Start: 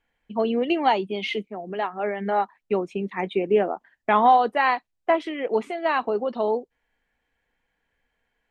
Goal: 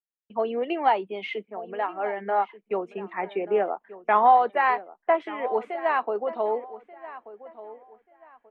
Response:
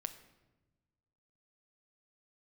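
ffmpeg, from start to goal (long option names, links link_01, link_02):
-filter_complex "[0:a]acrossover=split=400 2400:gain=0.224 1 0.141[link_01][link_02][link_03];[link_01][link_02][link_03]amix=inputs=3:normalize=0,asplit=2[link_04][link_05];[link_05]adelay=1184,lowpass=frequency=2800:poles=1,volume=-16dB,asplit=2[link_06][link_07];[link_07]adelay=1184,lowpass=frequency=2800:poles=1,volume=0.28,asplit=2[link_08][link_09];[link_09]adelay=1184,lowpass=frequency=2800:poles=1,volume=0.28[link_10];[link_04][link_06][link_08][link_10]amix=inputs=4:normalize=0,agate=range=-33dB:threshold=-57dB:ratio=3:detection=peak"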